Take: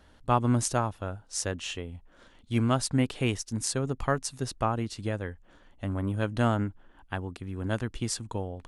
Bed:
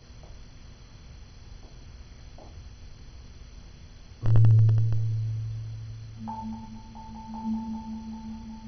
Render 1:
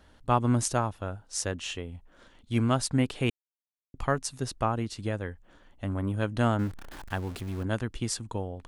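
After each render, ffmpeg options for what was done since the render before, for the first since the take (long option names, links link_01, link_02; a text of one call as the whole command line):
ffmpeg -i in.wav -filter_complex "[0:a]asettb=1/sr,asplit=3[link_01][link_02][link_03];[link_01]atrim=end=6.594[link_04];[link_02]atrim=start=6.59:end=7.63,asetpts=PTS-STARTPTS,afade=type=in:duration=0.004:curve=qsin,afade=type=out:start_time=1.036:duration=0.004:curve=qsin,aeval=exprs='val(0)+0.5*0.0119*sgn(val(0))':channel_layout=same[link_05];[link_03]atrim=start=7.626[link_06];[link_04][link_05]acrossfade=duration=0.004:curve1=hsin:curve2=qsin[link_07];[link_07][link_06]acrossfade=duration=0.004:curve1=qsin:curve2=hsin,asplit=3[link_08][link_09][link_10];[link_08]atrim=end=3.3,asetpts=PTS-STARTPTS,afade=type=out:start_time=3.296:duration=0.004:curve=hsin[link_11];[link_09]atrim=start=3.3:end=3.94,asetpts=PTS-STARTPTS,volume=0[link_12];[link_10]atrim=start=3.94,asetpts=PTS-STARTPTS,afade=type=in:duration=0.004:curve=hsin[link_13];[link_11][link_12][link_13]concat=n=3:v=0:a=1" out.wav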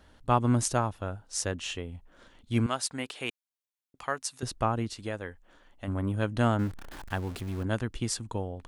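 ffmpeg -i in.wav -filter_complex "[0:a]asettb=1/sr,asplit=3[link_01][link_02][link_03];[link_01]atrim=end=2.664[link_04];[link_02]atrim=start=2.66:end=4.43,asetpts=PTS-STARTPTS,afade=type=in:duration=0.004:curve=qsin,afade=type=out:start_time=1.766:duration=0.004:curve=qsin,highpass=frequency=950:poles=1[link_05];[link_03]atrim=start=4.426[link_06];[link_04][link_05]acrossfade=duration=0.004:curve1=hsin:curve2=qsin[link_07];[link_07][link_06]acrossfade=duration=0.004:curve1=qsin:curve2=hsin,asettb=1/sr,asplit=3[link_08][link_09][link_10];[link_08]atrim=end=4.934[link_11];[link_09]atrim=start=4.93:end=5.88,asetpts=PTS-STARTPTS,afade=type=in:duration=0.004:curve=qsin,afade=type=out:start_time=0.946:duration=0.004:curve=qsin,equalizer=frequency=89:width=0.34:gain=-8[link_12];[link_10]atrim=start=5.876[link_13];[link_11][link_12]acrossfade=duration=0.004:curve1=hsin:curve2=qsin[link_14];[link_14][link_13]acrossfade=duration=0.004:curve1=qsin:curve2=hsin" out.wav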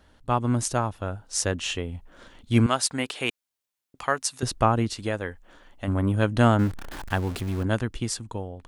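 ffmpeg -i in.wav -af "dynaudnorm=framelen=150:gausssize=13:maxgain=7dB" out.wav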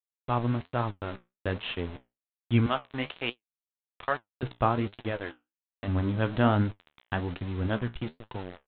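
ffmpeg -i in.wav -af "aresample=8000,aeval=exprs='val(0)*gte(abs(val(0)),0.0237)':channel_layout=same,aresample=44100,flanger=delay=7.7:depth=9.8:regen=59:speed=1.2:shape=triangular" out.wav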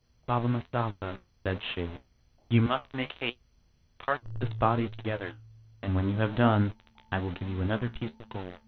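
ffmpeg -i in.wav -i bed.wav -filter_complex "[1:a]volume=-19dB[link_01];[0:a][link_01]amix=inputs=2:normalize=0" out.wav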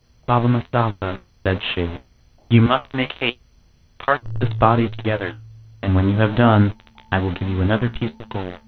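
ffmpeg -i in.wav -af "volume=11dB,alimiter=limit=-1dB:level=0:latency=1" out.wav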